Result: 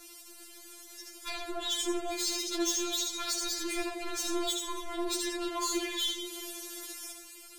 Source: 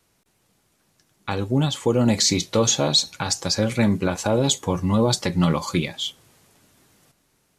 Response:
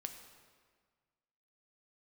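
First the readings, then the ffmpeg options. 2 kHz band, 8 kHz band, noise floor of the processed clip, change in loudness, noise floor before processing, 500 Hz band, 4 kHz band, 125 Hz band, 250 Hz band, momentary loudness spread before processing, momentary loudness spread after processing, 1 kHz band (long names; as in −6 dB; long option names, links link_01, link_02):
−7.5 dB, −7.0 dB, −51 dBFS, −11.5 dB, −67 dBFS, −13.5 dB, −8.0 dB, below −40 dB, −14.0 dB, 9 LU, 16 LU, −9.5 dB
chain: -filter_complex "[0:a]highshelf=frequency=2200:gain=12,aeval=exprs='0.596*(cos(1*acos(clip(val(0)/0.596,-1,1)))-cos(1*PI/2))+0.00841*(cos(4*acos(clip(val(0)/0.596,-1,1)))-cos(4*PI/2))+0.0075*(cos(8*acos(clip(val(0)/0.596,-1,1)))-cos(8*PI/2))':channel_layout=same,acompressor=threshold=-34dB:ratio=5,equalizer=frequency=270:width=1.8:gain=9.5,asplit=2[link_01][link_02];[1:a]atrim=start_sample=2205,asetrate=34839,aresample=44100,adelay=77[link_03];[link_02][link_03]afir=irnorm=-1:irlink=0,volume=-3dB[link_04];[link_01][link_04]amix=inputs=2:normalize=0,asoftclip=type=tanh:threshold=-33.5dB,afftfilt=real='re*4*eq(mod(b,16),0)':imag='im*4*eq(mod(b,16),0)':win_size=2048:overlap=0.75,volume=9dB"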